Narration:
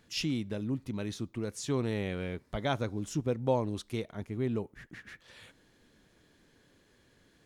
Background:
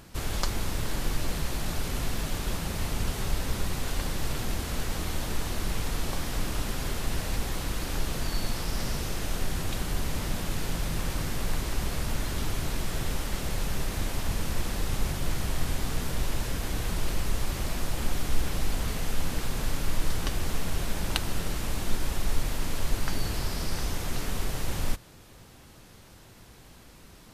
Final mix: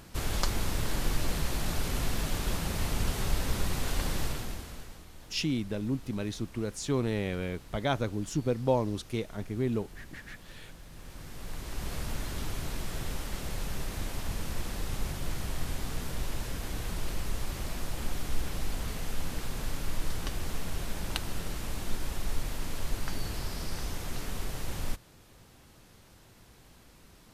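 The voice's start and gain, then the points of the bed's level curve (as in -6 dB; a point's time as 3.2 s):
5.20 s, +2.0 dB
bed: 4.2 s -0.5 dB
5.07 s -19.5 dB
10.85 s -19.5 dB
11.93 s -5 dB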